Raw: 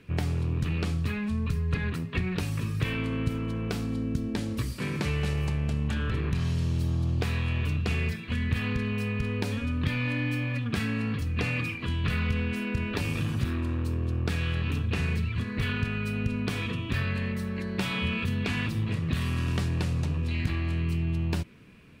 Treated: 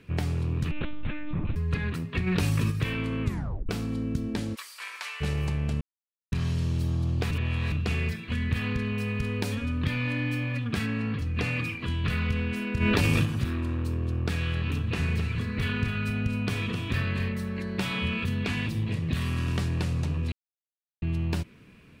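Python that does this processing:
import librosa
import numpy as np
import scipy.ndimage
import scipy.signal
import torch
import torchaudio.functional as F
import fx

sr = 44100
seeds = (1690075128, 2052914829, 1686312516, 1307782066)

y = fx.lpc_monotone(x, sr, seeds[0], pitch_hz=300.0, order=10, at=(0.71, 1.56))
y = fx.env_flatten(y, sr, amount_pct=70, at=(2.26, 2.7), fade=0.02)
y = fx.highpass(y, sr, hz=890.0, slope=24, at=(4.54, 5.2), fade=0.02)
y = fx.high_shelf(y, sr, hz=5700.0, db=6.0, at=(9.08, 9.55))
y = fx.high_shelf(y, sr, hz=7500.0, db=-11.5, at=(10.86, 11.35))
y = fx.env_flatten(y, sr, amount_pct=100, at=(12.8, 13.24), fade=0.02)
y = fx.echo_single(y, sr, ms=261, db=-8.0, at=(14.86, 17.28), fade=0.02)
y = fx.peak_eq(y, sr, hz=1300.0, db=-6.5, octaves=0.53, at=(18.54, 19.15))
y = fx.edit(y, sr, fx.tape_stop(start_s=3.23, length_s=0.46),
    fx.silence(start_s=5.81, length_s=0.51),
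    fx.reverse_span(start_s=7.31, length_s=0.41),
    fx.silence(start_s=20.32, length_s=0.7), tone=tone)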